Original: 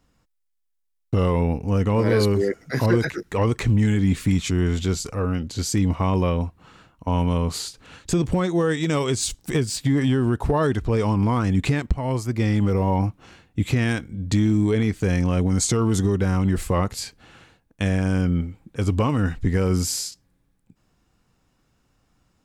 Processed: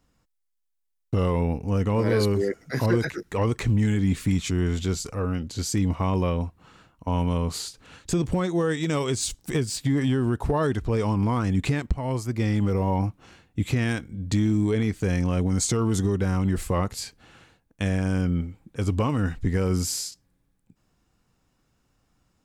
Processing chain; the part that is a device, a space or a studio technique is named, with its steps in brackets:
exciter from parts (in parallel at −14 dB: high-pass filter 4,000 Hz + soft clipping −33 dBFS, distortion −5 dB)
on the sum: level −3 dB

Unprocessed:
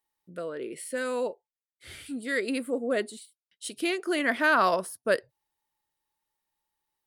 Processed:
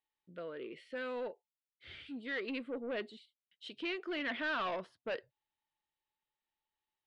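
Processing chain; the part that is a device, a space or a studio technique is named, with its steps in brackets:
overdriven synthesiser ladder filter (soft clipping −25 dBFS, distortion −9 dB; transistor ladder low-pass 3,900 Hz, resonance 40%)

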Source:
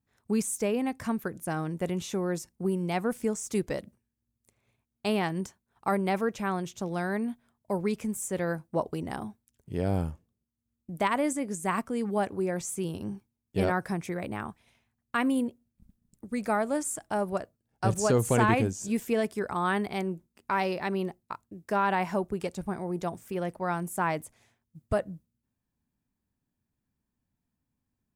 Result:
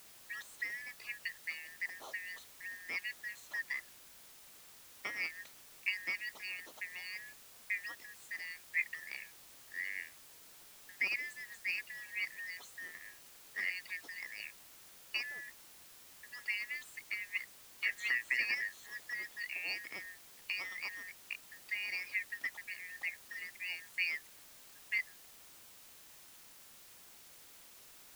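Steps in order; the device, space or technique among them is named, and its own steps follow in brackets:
high-pass filter 330 Hz 12 dB per octave
harmonic and percussive parts rebalanced harmonic −10 dB
high-pass filter 210 Hz
split-band scrambled radio (band-splitting scrambler in four parts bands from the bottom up 3142; band-pass filter 300–2,900 Hz; white noise bed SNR 14 dB)
level −3 dB

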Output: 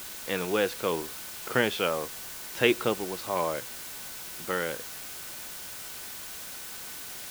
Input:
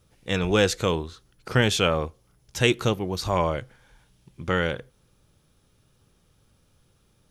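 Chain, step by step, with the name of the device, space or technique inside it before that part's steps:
shortwave radio (band-pass filter 260–2,900 Hz; amplitude tremolo 0.76 Hz, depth 43%; steady tone 1,500 Hz −55 dBFS; white noise bed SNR 8 dB)

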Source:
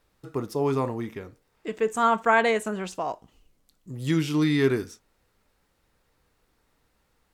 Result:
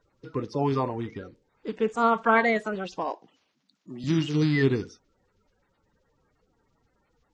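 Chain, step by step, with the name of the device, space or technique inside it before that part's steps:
clip after many re-uploads (low-pass filter 5,700 Hz 24 dB per octave; spectral magnitudes quantised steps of 30 dB)
0:03.10–0:04.04: high-pass filter 160 Hz 24 dB per octave

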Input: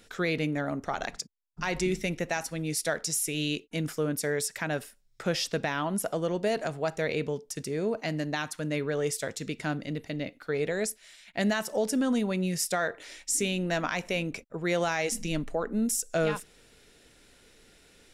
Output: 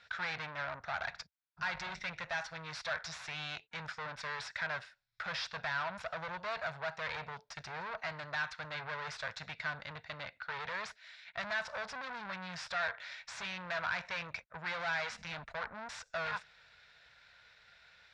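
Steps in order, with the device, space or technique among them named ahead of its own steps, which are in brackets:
scooped metal amplifier (tube saturation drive 36 dB, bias 0.8; loudspeaker in its box 95–3,900 Hz, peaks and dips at 230 Hz −4 dB, 410 Hz −6 dB, 650 Hz +5 dB, 940 Hz +4 dB, 1,500 Hz +7 dB, 3,000 Hz −8 dB; guitar amp tone stack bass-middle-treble 10-0-10)
level +10 dB

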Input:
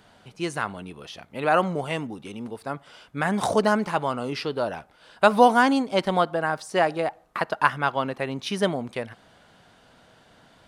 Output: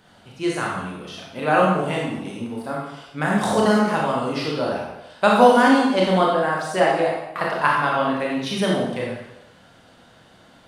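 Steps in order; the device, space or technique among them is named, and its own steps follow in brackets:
bathroom (convolution reverb RT60 0.85 s, pre-delay 23 ms, DRR −3 dB)
level −1 dB

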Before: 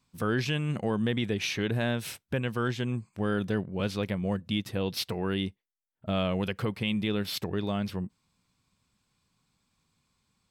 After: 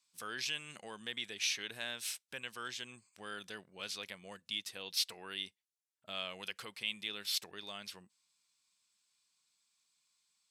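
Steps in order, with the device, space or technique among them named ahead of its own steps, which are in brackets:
piezo pickup straight into a mixer (low-pass filter 8,100 Hz 12 dB per octave; first difference)
level +4.5 dB

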